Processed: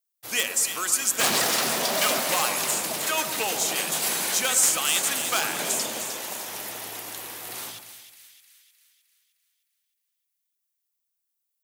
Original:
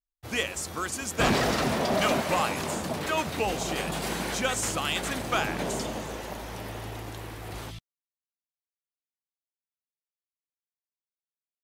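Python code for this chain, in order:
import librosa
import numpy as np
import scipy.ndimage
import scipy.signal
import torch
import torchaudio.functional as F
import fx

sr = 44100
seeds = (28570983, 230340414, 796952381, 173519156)

p1 = np.minimum(x, 2.0 * 10.0 ** (-20.5 / 20.0) - x)
p2 = scipy.signal.sosfilt(scipy.signal.butter(4, 100.0, 'highpass', fs=sr, output='sos'), p1)
p3 = fx.riaa(p2, sr, side='recording')
y = p3 + fx.echo_split(p3, sr, split_hz=1800.0, low_ms=113, high_ms=307, feedback_pct=52, wet_db=-9, dry=0)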